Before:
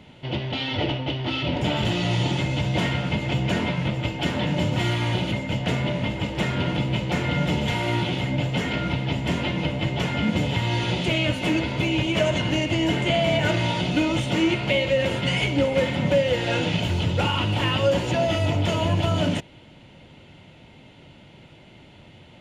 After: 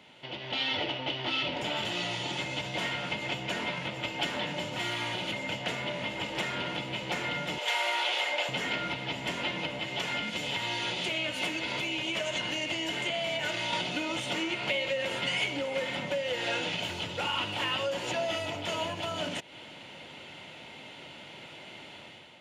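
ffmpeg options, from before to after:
-filter_complex "[0:a]asettb=1/sr,asplit=3[s0][s1][s2];[s0]atrim=end=7.584[s3];[s1]atrim=start=7.58:end=8.49,asetpts=PTS-STARTPTS,afade=t=in:d=0.004:c=qsin,afade=t=out:st=0.906:d=0.004:c=qsin,highpass=f=500:w=0.5412,highpass=f=500:w=1.3066[s4];[s2]atrim=start=8.486[s5];[s3][s4]acrossfade=d=0.004:c1=hsin:c2=qsin[s6];[s6][s5]acrossfade=d=0.004:c1=qsin:c2=hsin,asettb=1/sr,asplit=3[s7][s8][s9];[s7]atrim=end=9.794[s10];[s8]atrim=start=9.79:end=13.73,asetpts=PTS-STARTPTS,afade=t=in:d=0.004:c=qsin,afade=t=out:st=3.936:d=0.004:c=qsin,acrossover=split=120|2200[s11][s12][s13];[s11]acompressor=threshold=0.00891:ratio=4[s14];[s12]acompressor=threshold=0.0251:ratio=4[s15];[s13]acompressor=threshold=0.0141:ratio=4[s16];[s14][s15][s16]amix=inputs=3:normalize=0[s17];[s9]atrim=start=13.726[s18];[s10][s17]acrossfade=d=0.004:c1=hsin:c2=qsin[s19];[s19][s18]acrossfade=d=0.004:c1=qsin:c2=hsin,acompressor=threshold=0.0251:ratio=6,highpass=f=800:p=1,dynaudnorm=f=130:g=7:m=2.82,volume=0.841"

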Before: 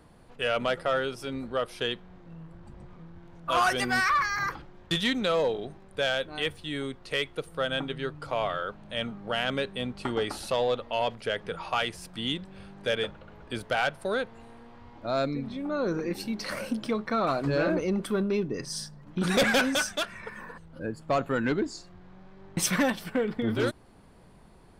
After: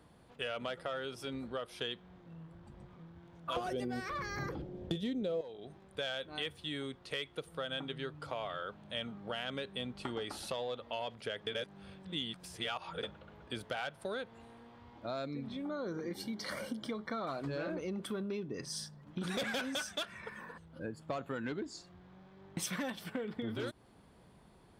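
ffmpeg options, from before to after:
-filter_complex "[0:a]asettb=1/sr,asplit=3[s0][s1][s2];[s0]atrim=end=3.564[s3];[s1]atrim=start=3.56:end=5.41,asetpts=PTS-STARTPTS,afade=t=in:d=0.004:c=qsin,afade=t=out:st=1.846:d=0.004:c=qsin,lowshelf=f=740:t=q:w=1.5:g=13.5[s4];[s2]atrim=start=5.406[s5];[s3][s4]acrossfade=d=0.004:c1=hsin:c2=qsin[s6];[s6][s5]acrossfade=d=0.004:c1=qsin:c2=hsin,asettb=1/sr,asplit=3[s7][s8][s9];[s7]atrim=end=15.644[s10];[s8]atrim=start=15.64:end=17.32,asetpts=PTS-STARTPTS,afade=t=in:d=0.004:c=qsin,afade=t=out:st=1.676:d=0.004:c=qsin,asuperstop=centerf=2600:order=8:qfactor=6.7[s11];[s9]atrim=start=17.316[s12];[s10][s11]acrossfade=d=0.004:c1=hsin:c2=qsin[s13];[s13][s12]acrossfade=d=0.004:c1=qsin:c2=hsin,asplit=3[s14][s15][s16];[s14]atrim=end=11.472[s17];[s15]atrim=start=11.468:end=13.032,asetpts=PTS-STARTPTS,areverse[s18];[s16]atrim=start=13.028[s19];[s17][s18]acrossfade=d=0.004:c1=hsin:c2=hsin[s20];[s20][s19]acrossfade=d=0.004:c1=hsin:c2=hsin,acompressor=threshold=0.0316:ratio=6,highpass=52,equalizer=f=3400:w=5.5:g=4.5,volume=0.531"

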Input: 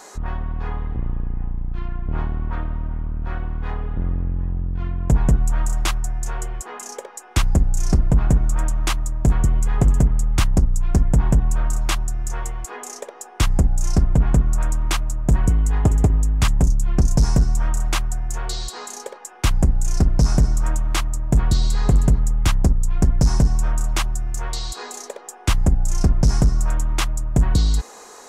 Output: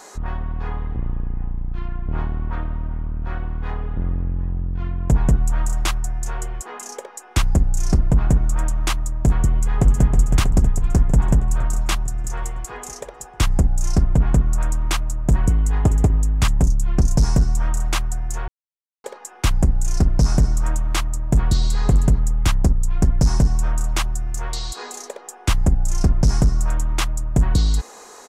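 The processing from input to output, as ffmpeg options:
-filter_complex "[0:a]asplit=2[s0][s1];[s1]afade=t=in:st=9.5:d=0.01,afade=t=out:st=10.05:d=0.01,aecho=0:1:320|640|960|1280|1600|1920|2240|2560|2880|3200|3520|3840:0.530884|0.371619|0.260133|0.182093|0.127465|0.0892257|0.062458|0.0437206|0.0306044|0.0214231|0.0149962|0.0104973[s2];[s0][s2]amix=inputs=2:normalize=0,asplit=3[s3][s4][s5];[s3]atrim=end=18.48,asetpts=PTS-STARTPTS,afade=t=out:st=18.476:d=0.004:c=hsin[s6];[s4]atrim=start=18.48:end=19.04,asetpts=PTS-STARTPTS,volume=0[s7];[s5]atrim=start=19.04,asetpts=PTS-STARTPTS,afade=t=in:d=0.004:c=hsin[s8];[s6][s7][s8]concat=n=3:v=0:a=1"

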